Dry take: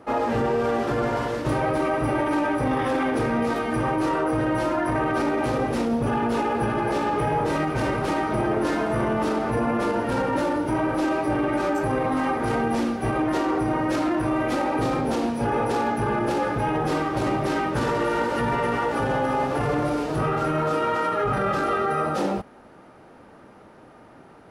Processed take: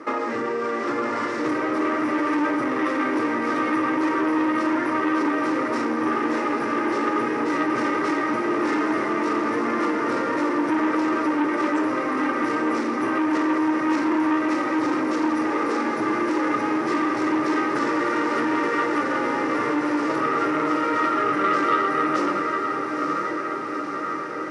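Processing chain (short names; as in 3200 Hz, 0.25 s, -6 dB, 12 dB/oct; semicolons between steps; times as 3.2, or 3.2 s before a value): compressor 6:1, threshold -29 dBFS, peak gain reduction 9.5 dB; speaker cabinet 280–8900 Hz, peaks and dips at 310 Hz +10 dB, 750 Hz -10 dB, 1200 Hz +8 dB, 2000 Hz +9 dB, 3200 Hz -4 dB, 5500 Hz +5 dB; on a send: diffused feedback echo 0.908 s, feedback 71%, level -5 dB; on the sum: core saturation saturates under 890 Hz; gain +6 dB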